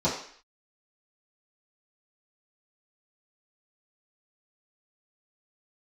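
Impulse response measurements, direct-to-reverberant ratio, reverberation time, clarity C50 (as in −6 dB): −11.0 dB, 0.55 s, 5.5 dB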